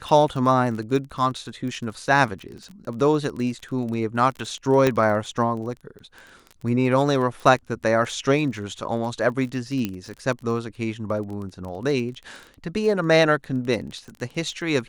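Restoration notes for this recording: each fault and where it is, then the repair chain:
crackle 23 per s -31 dBFS
4.87 s: pop -7 dBFS
9.85 s: pop -12 dBFS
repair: de-click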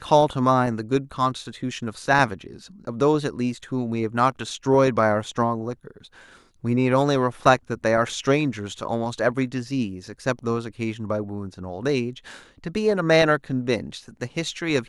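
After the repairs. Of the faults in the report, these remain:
nothing left

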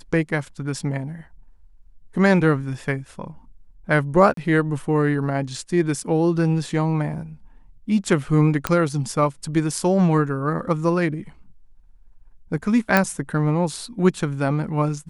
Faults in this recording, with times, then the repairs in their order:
4.34–4.37 s: dropout 33 ms
8.67 s: pop -5 dBFS
12.97 s: pop -3 dBFS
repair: de-click; interpolate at 4.34 s, 33 ms

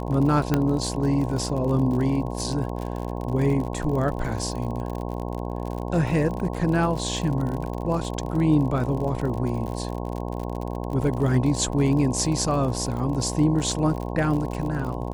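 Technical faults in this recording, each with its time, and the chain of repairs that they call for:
buzz 60 Hz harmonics 18 -30 dBFS
crackle 52 per s -30 dBFS
0.54 s: pop -8 dBFS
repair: de-click; de-hum 60 Hz, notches 18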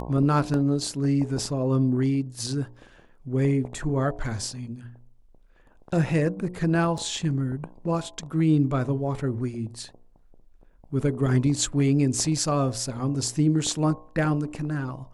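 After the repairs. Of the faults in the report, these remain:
0.54 s: pop

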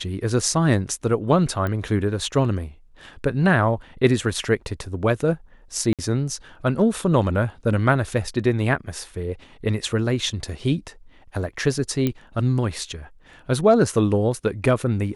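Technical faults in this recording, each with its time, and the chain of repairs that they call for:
1.67 s: pop -15 dBFS
5.93–5.99 s: dropout 57 ms
12.07 s: pop -10 dBFS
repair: de-click; interpolate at 5.93 s, 57 ms

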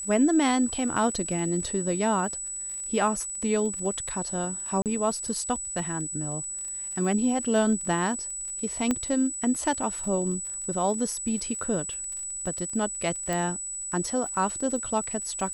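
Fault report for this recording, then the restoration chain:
crackle 31 per s -36 dBFS
whine 7.9 kHz -32 dBFS
4.82–4.86 s: dropout 38 ms
8.91 s: pop -12 dBFS
13.33 s: pop -15 dBFS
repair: de-click; band-stop 7.9 kHz, Q 30; interpolate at 4.82 s, 38 ms

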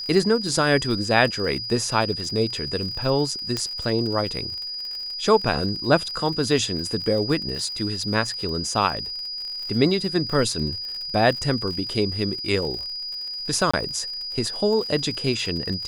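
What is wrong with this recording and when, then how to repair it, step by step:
crackle 60 per s -31 dBFS
whine 4.9 kHz -29 dBFS
3.57 s: pop -12 dBFS
13.71–13.73 s: dropout 25 ms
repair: de-click; band-stop 4.9 kHz, Q 30; interpolate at 13.71 s, 25 ms

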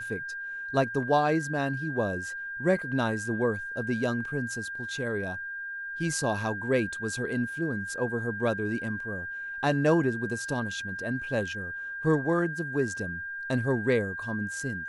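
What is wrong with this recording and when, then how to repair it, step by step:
whine 1.6 kHz -34 dBFS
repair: band-stop 1.6 kHz, Q 30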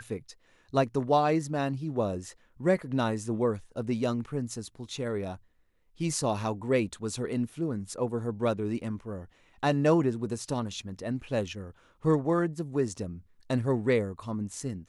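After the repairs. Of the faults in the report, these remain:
nothing left

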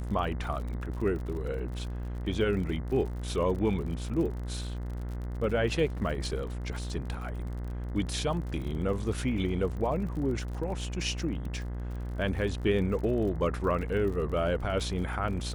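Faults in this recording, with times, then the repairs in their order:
buzz 60 Hz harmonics 35 -35 dBFS
crackle 52 per s -38 dBFS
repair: de-click; de-hum 60 Hz, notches 35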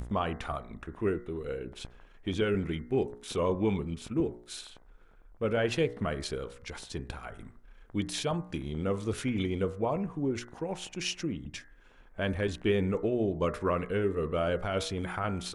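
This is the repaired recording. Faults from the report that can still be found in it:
nothing left

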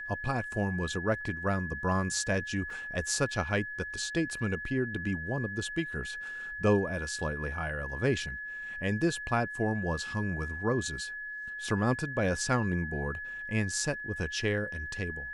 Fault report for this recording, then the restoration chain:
whine 1.7 kHz -37 dBFS
2.70 s: dropout 3.3 ms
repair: band-stop 1.7 kHz, Q 30; interpolate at 2.70 s, 3.3 ms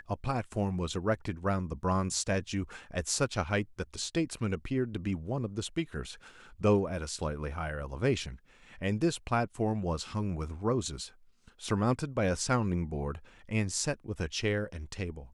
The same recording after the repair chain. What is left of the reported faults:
nothing left

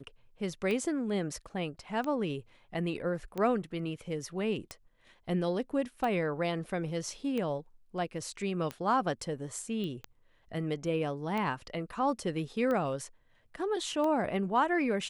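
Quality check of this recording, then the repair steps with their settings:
tick 45 rpm -22 dBFS
9.84 s: pop -27 dBFS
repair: de-click

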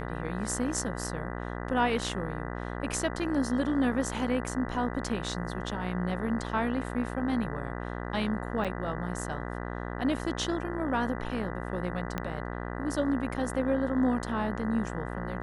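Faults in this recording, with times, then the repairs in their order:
buzz 60 Hz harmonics 33 -36 dBFS
8.64–8.65 s: dropout 6.7 ms
12.18 s: pop -17 dBFS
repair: de-click; de-hum 60 Hz, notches 33; interpolate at 8.64 s, 6.7 ms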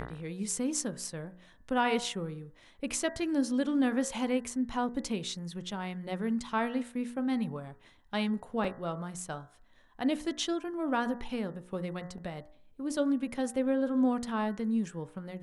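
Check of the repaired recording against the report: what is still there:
12.18 s: pop

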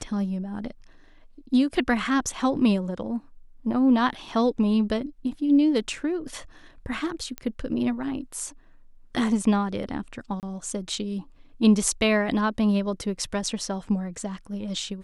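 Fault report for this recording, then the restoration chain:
7.38 s: pop -16 dBFS
10.40–10.43 s: dropout 28 ms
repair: de-click; interpolate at 10.40 s, 28 ms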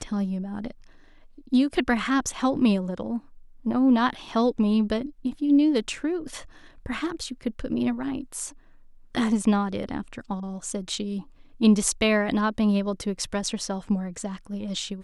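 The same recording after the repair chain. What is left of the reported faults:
nothing left

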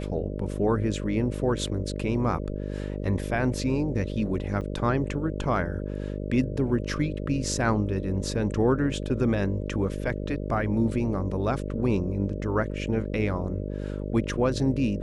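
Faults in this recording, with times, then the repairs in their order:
buzz 50 Hz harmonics 12 -32 dBFS
4.61–4.62 s: dropout 5.3 ms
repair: de-hum 50 Hz, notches 12; interpolate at 4.61 s, 5.3 ms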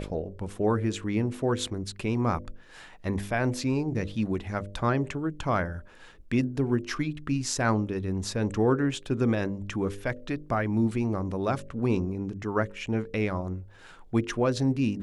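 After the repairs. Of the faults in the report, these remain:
nothing left

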